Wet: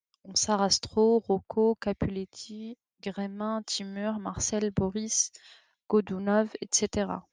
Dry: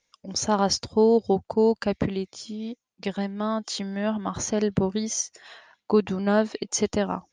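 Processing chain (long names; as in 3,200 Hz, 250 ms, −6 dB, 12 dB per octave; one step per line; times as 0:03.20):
downward compressor 1.5 to 1, threshold −32 dBFS, peak gain reduction 6.5 dB
multiband upward and downward expander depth 70%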